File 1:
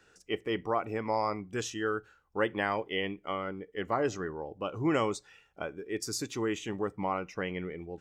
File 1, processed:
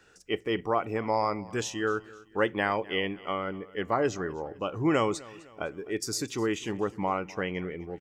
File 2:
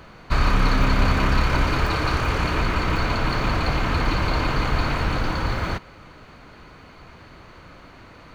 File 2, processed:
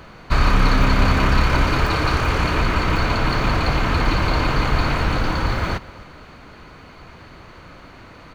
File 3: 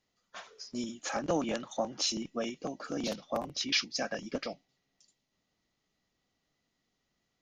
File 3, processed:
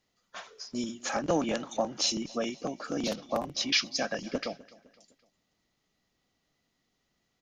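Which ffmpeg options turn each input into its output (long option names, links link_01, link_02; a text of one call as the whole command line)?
ffmpeg -i in.wav -af "aecho=1:1:255|510|765:0.0891|0.0401|0.018,volume=3dB" out.wav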